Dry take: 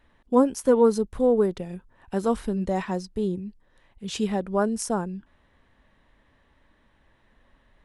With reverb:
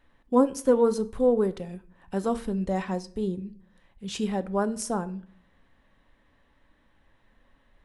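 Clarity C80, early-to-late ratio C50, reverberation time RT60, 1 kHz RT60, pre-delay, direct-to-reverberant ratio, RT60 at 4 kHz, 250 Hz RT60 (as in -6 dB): 22.5 dB, 19.0 dB, 0.55 s, 0.50 s, 4 ms, 11.0 dB, 0.40 s, 0.75 s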